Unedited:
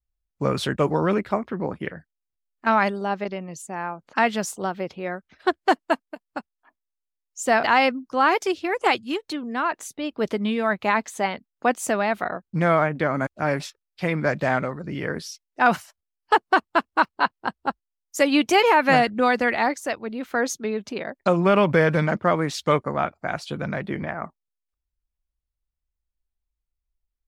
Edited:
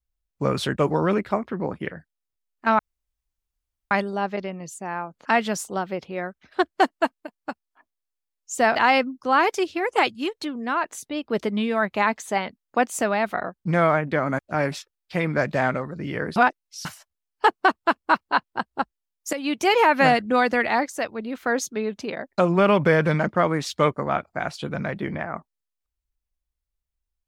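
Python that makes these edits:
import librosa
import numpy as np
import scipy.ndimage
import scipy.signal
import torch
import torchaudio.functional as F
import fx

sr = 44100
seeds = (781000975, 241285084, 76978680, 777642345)

y = fx.edit(x, sr, fx.insert_room_tone(at_s=2.79, length_s=1.12),
    fx.reverse_span(start_s=15.24, length_s=0.49),
    fx.fade_in_from(start_s=18.21, length_s=0.48, floor_db=-13.5), tone=tone)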